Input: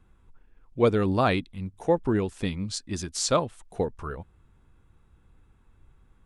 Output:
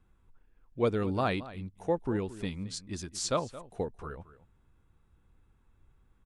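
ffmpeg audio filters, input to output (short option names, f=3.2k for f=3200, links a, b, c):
-filter_complex "[0:a]asplit=2[a][b];[b]adelay=221.6,volume=-16dB,highshelf=f=4k:g=-4.99[c];[a][c]amix=inputs=2:normalize=0,volume=-6.5dB"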